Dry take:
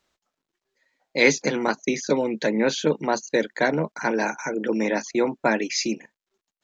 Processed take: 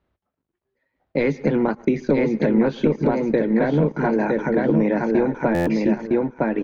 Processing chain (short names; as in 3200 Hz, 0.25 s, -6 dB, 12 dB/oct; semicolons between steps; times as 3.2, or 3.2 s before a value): HPF 45 Hz; bell 94 Hz +6 dB 0.42 oct; feedback echo 0.96 s, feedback 24%, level -4 dB; on a send at -23.5 dB: reverb, pre-delay 0.106 s; on the sum: sample leveller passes 1; compressor 5:1, threshold -20 dBFS, peak gain reduction 10 dB; LPF 3100 Hz 12 dB/oct; tilt -3.5 dB/oct; stuck buffer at 5.54, samples 512, times 10